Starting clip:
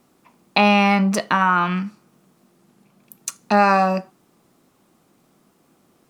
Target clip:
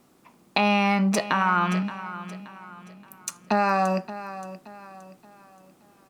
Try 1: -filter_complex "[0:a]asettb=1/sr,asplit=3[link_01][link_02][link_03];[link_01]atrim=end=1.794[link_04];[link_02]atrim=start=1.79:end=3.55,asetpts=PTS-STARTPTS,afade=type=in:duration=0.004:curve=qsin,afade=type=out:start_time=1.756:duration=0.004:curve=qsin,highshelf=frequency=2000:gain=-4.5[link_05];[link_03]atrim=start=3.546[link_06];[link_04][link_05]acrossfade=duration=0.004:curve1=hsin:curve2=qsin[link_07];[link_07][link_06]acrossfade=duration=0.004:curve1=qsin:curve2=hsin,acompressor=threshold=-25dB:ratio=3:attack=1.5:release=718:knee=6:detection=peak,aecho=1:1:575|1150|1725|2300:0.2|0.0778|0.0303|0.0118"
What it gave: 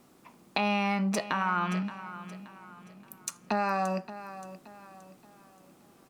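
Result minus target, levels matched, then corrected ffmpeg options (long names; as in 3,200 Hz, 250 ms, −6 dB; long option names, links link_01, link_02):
downward compressor: peak gain reduction +6.5 dB
-filter_complex "[0:a]asettb=1/sr,asplit=3[link_01][link_02][link_03];[link_01]atrim=end=1.794[link_04];[link_02]atrim=start=1.79:end=3.55,asetpts=PTS-STARTPTS,afade=type=in:duration=0.004:curve=qsin,afade=type=out:start_time=1.756:duration=0.004:curve=qsin,highshelf=frequency=2000:gain=-4.5[link_05];[link_03]atrim=start=3.546[link_06];[link_04][link_05]acrossfade=duration=0.004:curve1=hsin:curve2=qsin[link_07];[link_07][link_06]acrossfade=duration=0.004:curve1=qsin:curve2=hsin,acompressor=threshold=-15dB:ratio=3:attack=1.5:release=718:knee=6:detection=peak,aecho=1:1:575|1150|1725|2300:0.2|0.0778|0.0303|0.0118"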